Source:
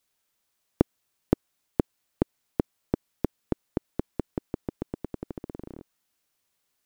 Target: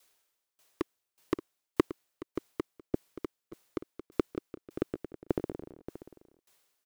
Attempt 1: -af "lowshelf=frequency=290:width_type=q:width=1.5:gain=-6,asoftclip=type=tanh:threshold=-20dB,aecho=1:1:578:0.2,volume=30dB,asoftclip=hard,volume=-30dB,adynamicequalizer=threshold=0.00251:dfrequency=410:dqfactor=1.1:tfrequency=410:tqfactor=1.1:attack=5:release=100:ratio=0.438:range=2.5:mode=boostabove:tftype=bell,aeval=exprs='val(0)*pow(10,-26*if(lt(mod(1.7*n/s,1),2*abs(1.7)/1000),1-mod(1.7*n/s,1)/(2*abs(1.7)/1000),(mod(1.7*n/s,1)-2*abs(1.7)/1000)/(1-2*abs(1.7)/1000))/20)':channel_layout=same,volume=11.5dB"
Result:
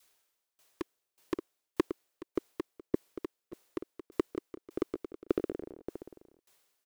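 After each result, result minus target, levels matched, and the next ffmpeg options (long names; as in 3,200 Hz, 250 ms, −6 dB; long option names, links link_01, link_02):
125 Hz band −6.0 dB; gain into a clipping stage and back: distortion +8 dB
-af "lowshelf=frequency=290:width_type=q:width=1.5:gain=-6,asoftclip=type=tanh:threshold=-20dB,aecho=1:1:578:0.2,volume=30dB,asoftclip=hard,volume=-30dB,adynamicequalizer=threshold=0.00251:dfrequency=140:dqfactor=1.1:tfrequency=140:tqfactor=1.1:attack=5:release=100:ratio=0.438:range=2.5:mode=boostabove:tftype=bell,aeval=exprs='val(0)*pow(10,-26*if(lt(mod(1.7*n/s,1),2*abs(1.7)/1000),1-mod(1.7*n/s,1)/(2*abs(1.7)/1000),(mod(1.7*n/s,1)-2*abs(1.7)/1000)/(1-2*abs(1.7)/1000))/20)':channel_layout=same,volume=11.5dB"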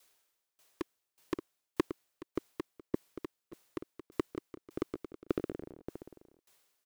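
gain into a clipping stage and back: distortion +8 dB
-af "lowshelf=frequency=290:width_type=q:width=1.5:gain=-6,asoftclip=type=tanh:threshold=-20dB,aecho=1:1:578:0.2,volume=24dB,asoftclip=hard,volume=-24dB,adynamicequalizer=threshold=0.00251:dfrequency=140:dqfactor=1.1:tfrequency=140:tqfactor=1.1:attack=5:release=100:ratio=0.438:range=2.5:mode=boostabove:tftype=bell,aeval=exprs='val(0)*pow(10,-26*if(lt(mod(1.7*n/s,1),2*abs(1.7)/1000),1-mod(1.7*n/s,1)/(2*abs(1.7)/1000),(mod(1.7*n/s,1)-2*abs(1.7)/1000)/(1-2*abs(1.7)/1000))/20)':channel_layout=same,volume=11.5dB"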